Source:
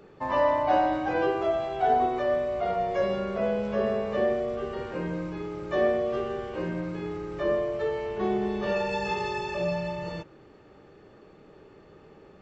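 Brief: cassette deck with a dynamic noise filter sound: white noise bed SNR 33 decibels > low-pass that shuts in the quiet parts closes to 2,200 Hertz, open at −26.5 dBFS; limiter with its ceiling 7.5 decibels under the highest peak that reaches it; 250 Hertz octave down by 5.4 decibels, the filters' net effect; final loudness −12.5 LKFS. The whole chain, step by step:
parametric band 250 Hz −8.5 dB
brickwall limiter −20 dBFS
white noise bed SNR 33 dB
low-pass that shuts in the quiet parts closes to 2,200 Hz, open at −26.5 dBFS
level +18 dB

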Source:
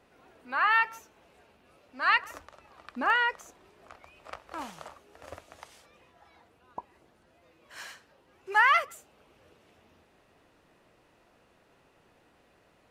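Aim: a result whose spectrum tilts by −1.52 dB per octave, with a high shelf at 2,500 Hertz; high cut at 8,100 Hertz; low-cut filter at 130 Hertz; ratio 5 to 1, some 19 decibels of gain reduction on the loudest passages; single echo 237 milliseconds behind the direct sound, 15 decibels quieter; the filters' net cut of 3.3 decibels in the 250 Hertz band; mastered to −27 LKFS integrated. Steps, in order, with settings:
high-pass filter 130 Hz
low-pass filter 8,100 Hz
parametric band 250 Hz −3.5 dB
high-shelf EQ 2,500 Hz +6 dB
downward compressor 5 to 1, threshold −39 dBFS
single-tap delay 237 ms −15 dB
level +17 dB

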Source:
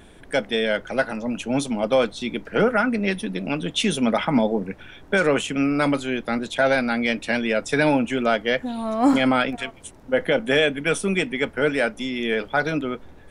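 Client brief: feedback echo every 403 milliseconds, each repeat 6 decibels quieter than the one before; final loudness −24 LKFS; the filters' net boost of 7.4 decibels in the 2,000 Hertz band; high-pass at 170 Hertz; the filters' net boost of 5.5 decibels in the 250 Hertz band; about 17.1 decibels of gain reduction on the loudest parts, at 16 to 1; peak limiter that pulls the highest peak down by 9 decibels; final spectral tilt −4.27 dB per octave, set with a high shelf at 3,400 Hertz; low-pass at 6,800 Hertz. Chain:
high-pass filter 170 Hz
low-pass filter 6,800 Hz
parametric band 250 Hz +7 dB
parametric band 2,000 Hz +8 dB
high-shelf EQ 3,400 Hz +5.5 dB
downward compressor 16 to 1, threshold −25 dBFS
brickwall limiter −21 dBFS
repeating echo 403 ms, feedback 50%, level −6 dB
level +6 dB

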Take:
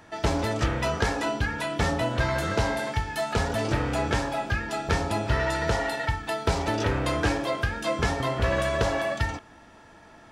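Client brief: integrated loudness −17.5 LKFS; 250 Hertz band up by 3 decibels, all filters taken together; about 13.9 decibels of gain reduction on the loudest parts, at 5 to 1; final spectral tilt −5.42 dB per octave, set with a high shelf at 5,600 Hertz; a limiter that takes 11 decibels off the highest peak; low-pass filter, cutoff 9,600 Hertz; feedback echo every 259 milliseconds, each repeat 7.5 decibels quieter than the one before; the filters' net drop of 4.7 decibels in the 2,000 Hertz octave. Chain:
low-pass filter 9,600 Hz
parametric band 250 Hz +4 dB
parametric band 2,000 Hz −5 dB
high-shelf EQ 5,600 Hz −8.5 dB
downward compressor 5 to 1, threshold −36 dBFS
brickwall limiter −32.5 dBFS
repeating echo 259 ms, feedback 42%, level −7.5 dB
level +23 dB

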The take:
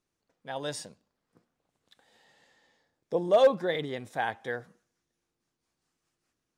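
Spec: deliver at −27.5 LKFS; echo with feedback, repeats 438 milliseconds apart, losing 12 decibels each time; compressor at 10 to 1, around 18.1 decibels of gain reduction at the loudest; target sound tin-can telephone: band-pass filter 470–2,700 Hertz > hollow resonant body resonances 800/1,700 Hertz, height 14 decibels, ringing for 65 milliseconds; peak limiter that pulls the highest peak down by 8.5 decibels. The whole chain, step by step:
downward compressor 10 to 1, threshold −35 dBFS
brickwall limiter −33 dBFS
band-pass filter 470–2,700 Hz
repeating echo 438 ms, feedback 25%, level −12 dB
hollow resonant body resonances 800/1,700 Hz, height 14 dB, ringing for 65 ms
level +16.5 dB

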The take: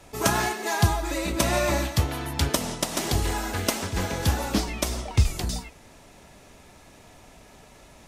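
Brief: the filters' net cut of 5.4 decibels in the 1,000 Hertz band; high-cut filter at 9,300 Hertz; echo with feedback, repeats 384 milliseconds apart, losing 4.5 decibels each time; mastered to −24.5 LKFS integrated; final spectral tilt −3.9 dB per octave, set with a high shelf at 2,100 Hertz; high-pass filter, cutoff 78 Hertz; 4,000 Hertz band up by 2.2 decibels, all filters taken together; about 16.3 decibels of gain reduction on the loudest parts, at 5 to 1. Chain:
high-pass filter 78 Hz
low-pass filter 9,300 Hz
parametric band 1,000 Hz −6.5 dB
high-shelf EQ 2,100 Hz −5.5 dB
parametric band 4,000 Hz +8.5 dB
downward compressor 5 to 1, threshold −36 dBFS
repeating echo 384 ms, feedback 60%, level −4.5 dB
level +12.5 dB

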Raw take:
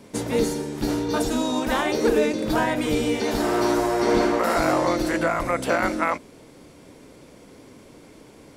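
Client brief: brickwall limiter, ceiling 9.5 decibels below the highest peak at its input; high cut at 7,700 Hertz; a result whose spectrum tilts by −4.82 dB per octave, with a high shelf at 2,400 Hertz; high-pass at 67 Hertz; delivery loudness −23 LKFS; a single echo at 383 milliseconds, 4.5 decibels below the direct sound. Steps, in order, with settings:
high-pass filter 67 Hz
low-pass filter 7,700 Hz
high-shelf EQ 2,400 Hz −6.5 dB
brickwall limiter −18 dBFS
single-tap delay 383 ms −4.5 dB
level +3 dB

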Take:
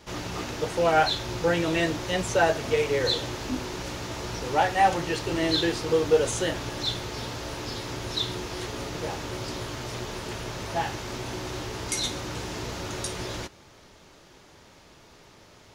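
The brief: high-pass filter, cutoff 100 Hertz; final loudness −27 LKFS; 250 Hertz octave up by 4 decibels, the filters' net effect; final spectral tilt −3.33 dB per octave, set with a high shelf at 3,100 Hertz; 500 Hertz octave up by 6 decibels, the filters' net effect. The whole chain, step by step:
high-pass filter 100 Hz
parametric band 250 Hz +3 dB
parametric band 500 Hz +6 dB
high-shelf EQ 3,100 Hz +6.5 dB
level −3.5 dB

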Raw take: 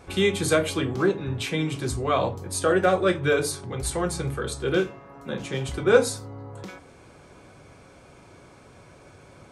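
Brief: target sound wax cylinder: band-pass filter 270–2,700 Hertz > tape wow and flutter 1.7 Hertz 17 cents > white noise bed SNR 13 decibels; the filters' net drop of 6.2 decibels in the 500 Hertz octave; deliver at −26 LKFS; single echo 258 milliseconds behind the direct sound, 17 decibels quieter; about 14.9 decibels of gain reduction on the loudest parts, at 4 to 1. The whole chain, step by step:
parametric band 500 Hz −7 dB
downward compressor 4 to 1, threshold −35 dBFS
band-pass filter 270–2,700 Hz
single-tap delay 258 ms −17 dB
tape wow and flutter 1.7 Hz 17 cents
white noise bed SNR 13 dB
level +16 dB

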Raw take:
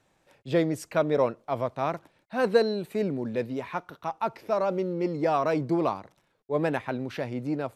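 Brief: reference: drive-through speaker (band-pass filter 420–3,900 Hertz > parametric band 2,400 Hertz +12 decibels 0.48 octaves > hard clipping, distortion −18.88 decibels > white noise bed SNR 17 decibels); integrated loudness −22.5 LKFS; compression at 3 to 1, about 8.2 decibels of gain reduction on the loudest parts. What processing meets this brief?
downward compressor 3 to 1, threshold −26 dBFS
band-pass filter 420–3,900 Hz
parametric band 2,400 Hz +12 dB 0.48 octaves
hard clipping −23 dBFS
white noise bed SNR 17 dB
level +11 dB

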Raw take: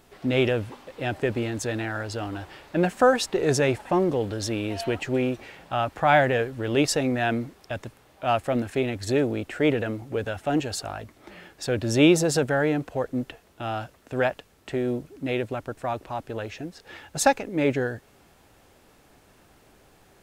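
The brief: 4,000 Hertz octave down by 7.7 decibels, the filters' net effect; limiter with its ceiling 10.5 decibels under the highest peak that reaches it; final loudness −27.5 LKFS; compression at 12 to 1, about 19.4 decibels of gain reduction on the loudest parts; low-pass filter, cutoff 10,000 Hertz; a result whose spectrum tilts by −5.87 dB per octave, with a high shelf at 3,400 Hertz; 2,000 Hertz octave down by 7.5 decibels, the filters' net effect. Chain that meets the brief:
low-pass filter 10,000 Hz
parametric band 2,000 Hz −8 dB
high-shelf EQ 3,400 Hz −3.5 dB
parametric band 4,000 Hz −5 dB
downward compressor 12 to 1, threshold −34 dBFS
level +14.5 dB
brickwall limiter −18 dBFS

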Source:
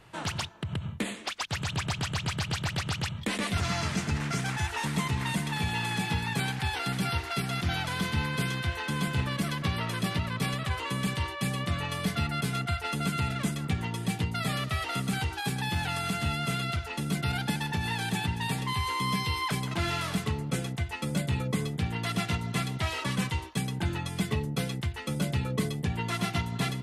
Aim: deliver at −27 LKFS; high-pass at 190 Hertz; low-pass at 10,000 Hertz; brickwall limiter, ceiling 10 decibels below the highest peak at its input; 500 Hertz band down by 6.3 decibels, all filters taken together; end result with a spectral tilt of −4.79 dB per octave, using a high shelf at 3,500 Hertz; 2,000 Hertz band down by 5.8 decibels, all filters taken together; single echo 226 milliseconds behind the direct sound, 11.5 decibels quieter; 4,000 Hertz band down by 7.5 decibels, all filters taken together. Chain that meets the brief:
high-pass filter 190 Hz
low-pass filter 10,000 Hz
parametric band 500 Hz −8 dB
parametric band 2,000 Hz −4 dB
high-shelf EQ 3,500 Hz −5.5 dB
parametric band 4,000 Hz −4.5 dB
brickwall limiter −30.5 dBFS
single-tap delay 226 ms −11.5 dB
level +12.5 dB

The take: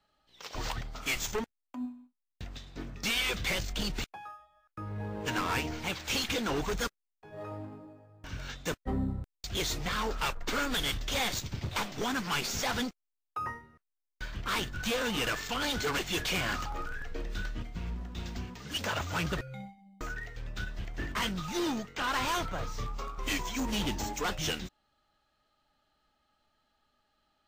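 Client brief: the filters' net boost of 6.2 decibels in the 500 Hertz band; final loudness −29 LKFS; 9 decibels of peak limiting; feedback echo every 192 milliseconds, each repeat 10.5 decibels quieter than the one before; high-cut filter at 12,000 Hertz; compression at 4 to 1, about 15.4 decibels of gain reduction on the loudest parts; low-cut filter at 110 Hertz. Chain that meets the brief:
high-pass filter 110 Hz
low-pass filter 12,000 Hz
parametric band 500 Hz +7.5 dB
downward compressor 4 to 1, threshold −43 dBFS
brickwall limiter −37.5 dBFS
repeating echo 192 ms, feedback 30%, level −10.5 dB
level +18 dB

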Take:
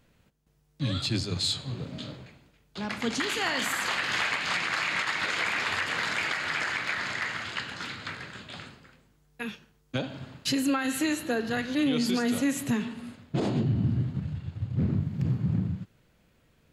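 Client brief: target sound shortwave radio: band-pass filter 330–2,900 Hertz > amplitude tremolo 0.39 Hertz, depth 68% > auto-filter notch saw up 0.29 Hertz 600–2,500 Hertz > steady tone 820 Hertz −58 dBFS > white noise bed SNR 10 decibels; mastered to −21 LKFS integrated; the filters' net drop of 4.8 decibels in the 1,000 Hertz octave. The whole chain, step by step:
band-pass filter 330–2,900 Hz
parametric band 1,000 Hz −6.5 dB
amplitude tremolo 0.39 Hz, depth 68%
auto-filter notch saw up 0.29 Hz 600–2,500 Hz
steady tone 820 Hz −58 dBFS
white noise bed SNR 10 dB
level +19 dB

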